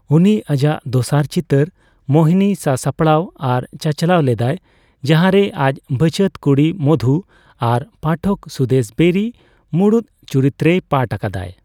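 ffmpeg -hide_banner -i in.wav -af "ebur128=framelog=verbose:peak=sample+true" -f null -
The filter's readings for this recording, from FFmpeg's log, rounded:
Integrated loudness:
  I:         -16.5 LUFS
  Threshold: -26.7 LUFS
Loudness range:
  LRA:         1.7 LU
  Threshold: -36.7 LUFS
  LRA low:   -17.7 LUFS
  LRA high:  -16.0 LUFS
Sample peak:
  Peak:       -1.4 dBFS
True peak:
  Peak:       -1.4 dBFS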